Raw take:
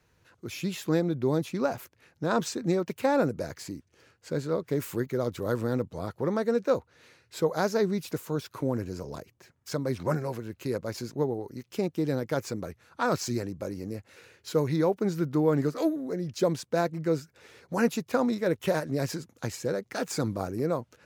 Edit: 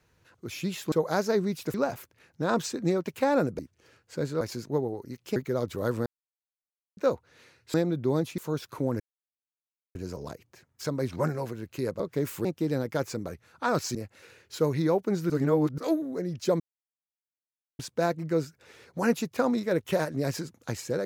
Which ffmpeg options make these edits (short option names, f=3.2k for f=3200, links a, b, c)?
-filter_complex "[0:a]asplit=17[a][b][c][d][e][f][g][h][i][j][k][l][m][n][o][p][q];[a]atrim=end=0.922[r];[b]atrim=start=7.378:end=8.202[s];[c]atrim=start=1.558:end=3.412[t];[d]atrim=start=3.728:end=4.552[u];[e]atrim=start=10.868:end=11.822[v];[f]atrim=start=4.998:end=5.7,asetpts=PTS-STARTPTS,afade=t=out:st=0.698:d=0.004:c=hsin[w];[g]atrim=start=5.7:end=6.61,asetpts=PTS-STARTPTS,volume=0[x];[h]atrim=start=6.61:end=7.382,asetpts=PTS-STARTPTS,afade=t=in:d=0.004:c=hsin[y];[i]atrim=start=0.918:end=1.562[z];[j]atrim=start=8.198:end=8.82,asetpts=PTS-STARTPTS,afade=t=out:st=0.618:d=0.004:c=hsin,apad=pad_dur=0.95[aa];[k]atrim=start=8.82:end=10.872,asetpts=PTS-STARTPTS,afade=t=in:d=0.004:c=hsin[ab];[l]atrim=start=4.548:end=5.002[ac];[m]atrim=start=11.818:end=13.322[ad];[n]atrim=start=13.888:end=15.242[ae];[o]atrim=start=15.238:end=15.722,asetpts=PTS-STARTPTS,areverse[af];[p]atrim=start=15.718:end=16.54,asetpts=PTS-STARTPTS,afade=t=out:st=0.818:d=0.004:c=hsin,apad=pad_dur=1.19[ag];[q]atrim=start=16.54,asetpts=PTS-STARTPTS,afade=t=in:d=0.004:c=hsin[ah];[r][s]acrossfade=d=0.004:c1=hsin:c2=hsin[ai];[ai][t]acrossfade=d=0.004:c1=hsin:c2=hsin[aj];[aj][u]acrossfade=d=0.004:c1=hsin:c2=hsin[ak];[ak][v]acrossfade=d=0.004:c1=hsin:c2=hsin[al];[w][x][y]concat=n=3:v=0:a=1[am];[al][am]acrossfade=d=0.004:c1=hsin:c2=hsin[an];[an][z]acrossfade=d=0.004:c1=hsin:c2=hsin[ao];[aa][ab]concat=n=2:v=0:a=1[ap];[ao][ap]acrossfade=d=0.004:c1=hsin:c2=hsin[aq];[aq][ac]acrossfade=d=0.004:c1=hsin:c2=hsin[ar];[ar][ad]acrossfade=d=0.004:c1=hsin:c2=hsin[as];[as][ae]acrossfade=d=0.004:c1=hsin:c2=hsin[at];[at][af]acrossfade=d=0.004:c1=hsin:c2=hsin[au];[ag][ah]concat=n=2:v=0:a=1[av];[au][av]acrossfade=d=0.004:c1=hsin:c2=hsin"